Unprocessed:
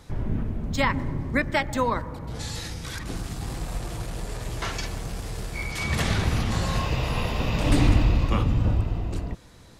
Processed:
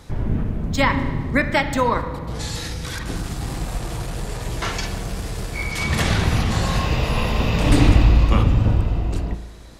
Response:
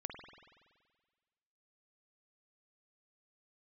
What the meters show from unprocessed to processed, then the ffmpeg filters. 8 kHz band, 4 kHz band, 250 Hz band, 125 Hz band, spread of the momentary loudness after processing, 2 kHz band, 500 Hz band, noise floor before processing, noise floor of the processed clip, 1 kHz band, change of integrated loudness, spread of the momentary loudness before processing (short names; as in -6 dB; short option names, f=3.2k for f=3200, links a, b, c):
+5.0 dB, +5.0 dB, +5.5 dB, +5.5 dB, 13 LU, +5.5 dB, +5.5 dB, -48 dBFS, -33 dBFS, +5.5 dB, +5.5 dB, 11 LU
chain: -filter_complex "[0:a]asplit=2[a][b];[1:a]atrim=start_sample=2205,asetrate=57330,aresample=44100[c];[b][c]afir=irnorm=-1:irlink=0,volume=3.5dB[d];[a][d]amix=inputs=2:normalize=0"